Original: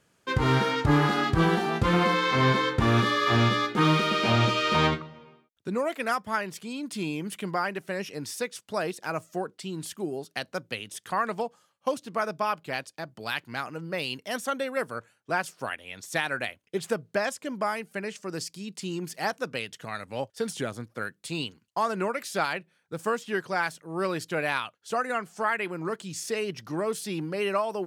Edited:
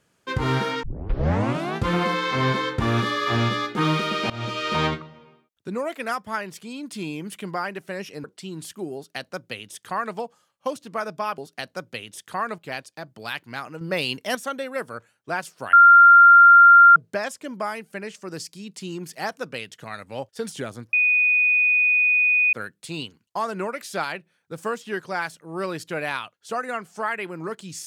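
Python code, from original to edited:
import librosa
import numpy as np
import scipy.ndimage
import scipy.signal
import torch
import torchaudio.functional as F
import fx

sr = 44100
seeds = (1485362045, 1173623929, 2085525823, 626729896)

y = fx.edit(x, sr, fx.tape_start(start_s=0.83, length_s=0.93),
    fx.fade_in_from(start_s=4.3, length_s=0.55, curve='qsin', floor_db=-20.0),
    fx.cut(start_s=8.24, length_s=1.21),
    fx.duplicate(start_s=10.16, length_s=1.2, to_s=12.59),
    fx.clip_gain(start_s=13.82, length_s=0.54, db=6.0),
    fx.bleep(start_s=15.74, length_s=1.23, hz=1390.0, db=-7.0),
    fx.insert_tone(at_s=20.94, length_s=1.6, hz=2480.0, db=-15.5), tone=tone)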